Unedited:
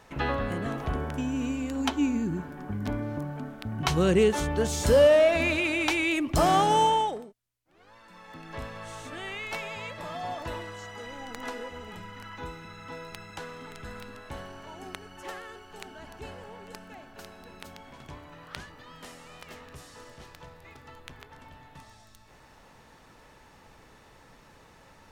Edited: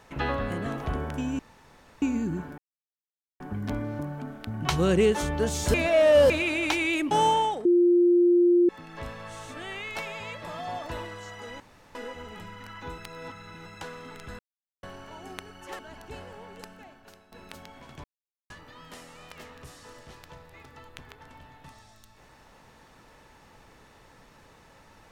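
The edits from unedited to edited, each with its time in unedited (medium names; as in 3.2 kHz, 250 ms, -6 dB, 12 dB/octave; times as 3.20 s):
1.39–2.02 s: room tone
2.58 s: insert silence 0.82 s
4.92–5.48 s: reverse
6.29–6.67 s: delete
7.21–8.25 s: bleep 350 Hz -16 dBFS
11.16–11.51 s: room tone
12.54–13.22 s: reverse
13.95–14.39 s: mute
15.35–15.90 s: delete
16.69–17.43 s: fade out, to -12.5 dB
18.15–18.61 s: mute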